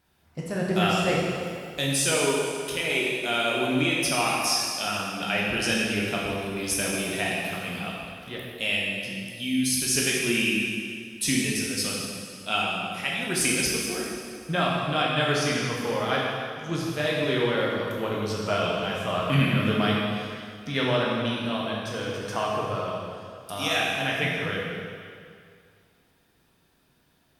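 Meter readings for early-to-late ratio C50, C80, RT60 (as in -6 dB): -1.0 dB, 0.5 dB, 2.2 s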